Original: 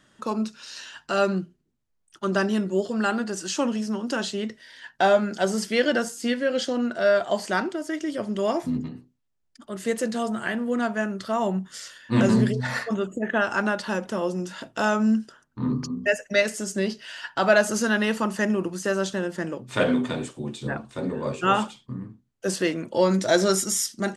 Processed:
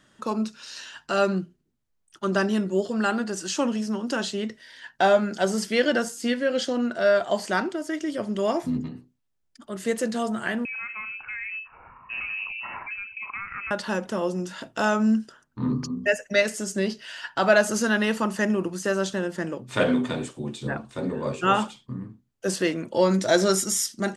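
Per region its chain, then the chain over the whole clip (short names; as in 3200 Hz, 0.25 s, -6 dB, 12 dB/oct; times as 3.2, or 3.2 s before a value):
10.65–13.71 compressor 3:1, threshold -34 dBFS + inverted band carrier 2800 Hz
whole clip: dry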